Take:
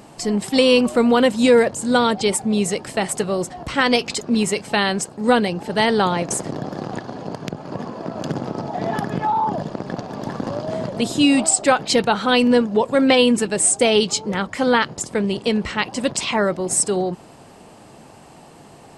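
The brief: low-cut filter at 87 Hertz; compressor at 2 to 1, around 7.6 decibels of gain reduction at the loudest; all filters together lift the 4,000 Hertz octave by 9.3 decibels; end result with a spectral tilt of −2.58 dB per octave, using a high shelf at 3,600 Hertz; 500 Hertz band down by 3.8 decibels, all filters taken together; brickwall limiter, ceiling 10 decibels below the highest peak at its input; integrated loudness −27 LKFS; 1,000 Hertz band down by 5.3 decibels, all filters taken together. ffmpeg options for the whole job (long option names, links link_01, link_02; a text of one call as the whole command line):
ffmpeg -i in.wav -af "highpass=87,equalizer=frequency=500:width_type=o:gain=-3,equalizer=frequency=1000:width_type=o:gain=-7,highshelf=frequency=3600:gain=8,equalizer=frequency=4000:width_type=o:gain=7.5,acompressor=threshold=-19dB:ratio=2,volume=-4.5dB,alimiter=limit=-15.5dB:level=0:latency=1" out.wav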